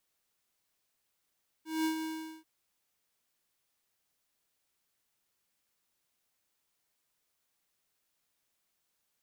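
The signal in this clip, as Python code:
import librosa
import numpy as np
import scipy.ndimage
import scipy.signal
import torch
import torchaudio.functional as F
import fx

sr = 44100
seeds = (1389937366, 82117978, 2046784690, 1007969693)

y = fx.adsr_tone(sr, wave='square', hz=318.0, attack_ms=195.0, decay_ms=104.0, sustain_db=-7.0, held_s=0.38, release_ms=408.0, level_db=-29.5)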